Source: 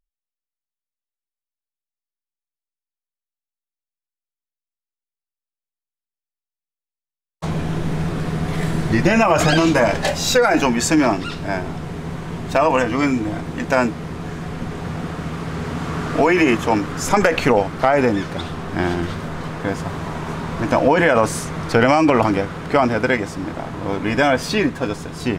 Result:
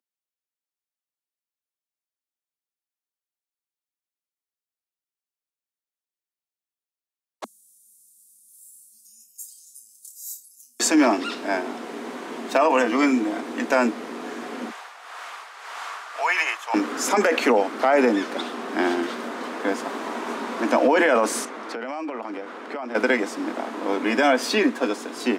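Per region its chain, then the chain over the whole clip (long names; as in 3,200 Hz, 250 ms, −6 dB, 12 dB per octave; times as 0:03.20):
0:07.44–0:10.80: inverse Chebyshev band-stop filter 300–2,100 Hz, stop band 80 dB + flutter between parallel walls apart 4.8 metres, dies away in 0.28 s
0:14.70–0:16.74: high-pass filter 780 Hz 24 dB per octave + amplitude tremolo 1.8 Hz, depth 59%
0:21.45–0:22.95: high-pass filter 1,100 Hz 6 dB per octave + spectral tilt −3.5 dB per octave + downward compressor, threshold −27 dBFS
whole clip: Butterworth high-pass 220 Hz 72 dB per octave; boost into a limiter +7.5 dB; level −8 dB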